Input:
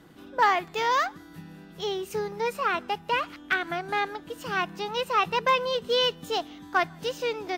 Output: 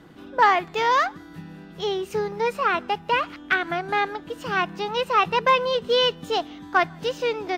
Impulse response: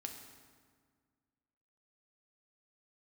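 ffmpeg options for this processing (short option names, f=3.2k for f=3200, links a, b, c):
-af "highshelf=f=6.9k:g=-10.5,volume=4.5dB"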